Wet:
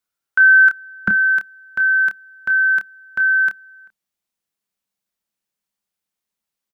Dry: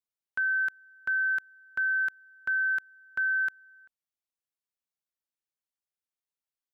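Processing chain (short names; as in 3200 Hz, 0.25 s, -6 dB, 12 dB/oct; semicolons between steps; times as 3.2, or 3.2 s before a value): bell 1400 Hz +11.5 dB 0.28 oct, from 1.08 s 200 Hz; doubler 28 ms -8 dB; gain +9 dB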